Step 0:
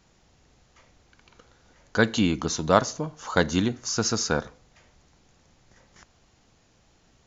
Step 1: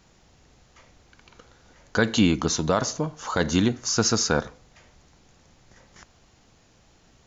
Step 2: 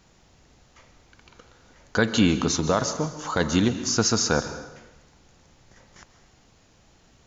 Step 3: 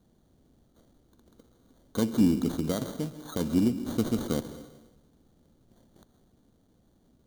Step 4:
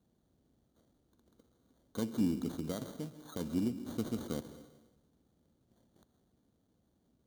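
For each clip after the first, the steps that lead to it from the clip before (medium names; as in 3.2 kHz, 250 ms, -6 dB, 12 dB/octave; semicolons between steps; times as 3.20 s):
peak limiter -12 dBFS, peak gain reduction 10 dB; trim +3.5 dB
plate-style reverb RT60 1 s, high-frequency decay 0.85×, pre-delay 120 ms, DRR 11 dB
median filter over 5 samples; sample-and-hold 17×; ten-band graphic EQ 250 Hz +8 dB, 1 kHz -7 dB, 2 kHz -10 dB; trim -8 dB
high-pass 47 Hz; trim -9 dB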